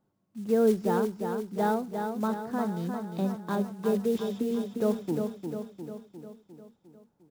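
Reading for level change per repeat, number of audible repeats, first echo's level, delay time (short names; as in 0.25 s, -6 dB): -5.0 dB, 6, -6.0 dB, 0.353 s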